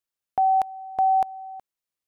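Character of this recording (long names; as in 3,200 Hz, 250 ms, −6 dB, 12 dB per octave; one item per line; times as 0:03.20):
background noise floor −89 dBFS
spectral slope +1.0 dB per octave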